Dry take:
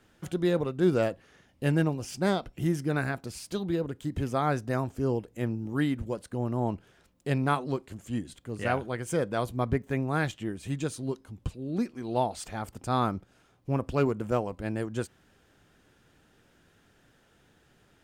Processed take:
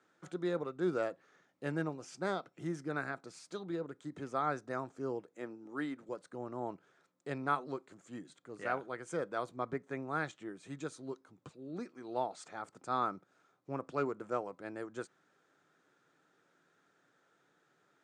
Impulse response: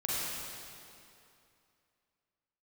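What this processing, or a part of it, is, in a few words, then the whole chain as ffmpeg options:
television speaker: -filter_complex "[0:a]highpass=f=170:w=0.5412,highpass=f=170:w=1.3066,equalizer=f=220:t=q:w=4:g=-10,equalizer=f=1.3k:t=q:w=4:g=7,equalizer=f=2.9k:t=q:w=4:g=-8,equalizer=f=5k:t=q:w=4:g=-4,lowpass=f=7.9k:w=0.5412,lowpass=f=7.9k:w=1.3066,asettb=1/sr,asplit=3[a][b][c];[a]atrim=end=5.294[d];[b]atrim=start=5.29:end=6.09,asetpts=PTS-STARTPTS,afade=t=in:d=0.004:c=qsin,afade=t=out:st=0.796:d=0.004:c=qsin,highpass=200[e];[c]atrim=start=6.086[f];[d][e]acrossfade=d=0.004:c1=hsin:c2=qsin[g];[g][f]acrossfade=d=0.004:c1=qsin:c2=hsin,volume=-8dB"

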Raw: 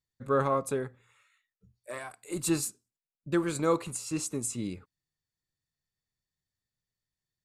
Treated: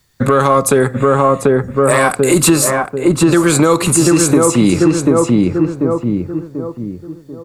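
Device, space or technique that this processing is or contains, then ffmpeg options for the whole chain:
mastering chain: -filter_complex "[0:a]asettb=1/sr,asplit=3[a][b][c];[a]atrim=end=0.804[d];[b]atrim=start=0.8:end=1.93,asetpts=PTS-STARTPTS,afade=t=in:d=0.004:c=qsin,afade=t=out:st=1.126:d=0.004:c=qsin,equalizer=f=8.3k:t=o:w=0.44:g=9.5[e];[c]atrim=start=1.926[f];[d][e]acrossfade=d=0.004:c1=hsin:c2=qsin[g];[g][f]acrossfade=d=0.004:c1=qsin:c2=hsin,equalizer=f=1.3k:t=o:w=0.77:g=2.5,asplit=2[h][i];[i]adelay=739,lowpass=f=1.2k:p=1,volume=-4dB,asplit=2[j][k];[k]adelay=739,lowpass=f=1.2k:p=1,volume=0.4,asplit=2[l][m];[m]adelay=739,lowpass=f=1.2k:p=1,volume=0.4,asplit=2[n][o];[o]adelay=739,lowpass=f=1.2k:p=1,volume=0.4,asplit=2[p][q];[q]adelay=739,lowpass=f=1.2k:p=1,volume=0.4[r];[h][j][l][n][p][r]amix=inputs=6:normalize=0,acrossover=split=150|3300|7000[s][t][u][v];[s]acompressor=threshold=-52dB:ratio=4[w];[t]acompressor=threshold=-34dB:ratio=4[x];[u]acompressor=threshold=-54dB:ratio=4[y];[v]acompressor=threshold=-45dB:ratio=4[z];[w][x][y][z]amix=inputs=4:normalize=0,acompressor=threshold=-39dB:ratio=2,asoftclip=type=tanh:threshold=-28dB,alimiter=level_in=32dB:limit=-1dB:release=50:level=0:latency=1,volume=-1dB"

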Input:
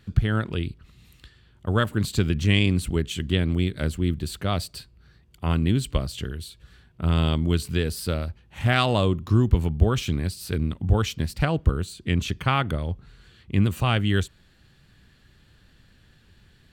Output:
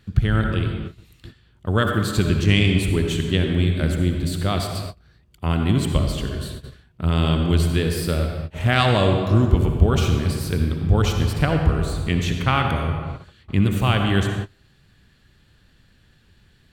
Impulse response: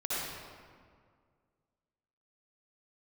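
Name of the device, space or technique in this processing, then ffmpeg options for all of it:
keyed gated reverb: -filter_complex "[0:a]asplit=3[a][b][c];[1:a]atrim=start_sample=2205[d];[b][d]afir=irnorm=-1:irlink=0[e];[c]apad=whole_len=737358[f];[e][f]sidechaingate=range=-33dB:threshold=-48dB:ratio=16:detection=peak,volume=-7dB[g];[a][g]amix=inputs=2:normalize=0"

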